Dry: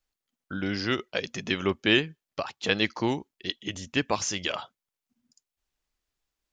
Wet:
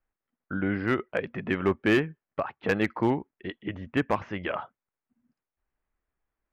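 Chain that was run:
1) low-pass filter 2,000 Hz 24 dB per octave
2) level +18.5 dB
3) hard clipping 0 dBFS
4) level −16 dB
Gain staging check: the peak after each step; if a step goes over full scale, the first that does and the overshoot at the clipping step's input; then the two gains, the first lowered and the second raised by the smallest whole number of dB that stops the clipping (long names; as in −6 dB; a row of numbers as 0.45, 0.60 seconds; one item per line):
−11.5, +7.0, 0.0, −16.0 dBFS
step 2, 7.0 dB
step 2 +11.5 dB, step 4 −9 dB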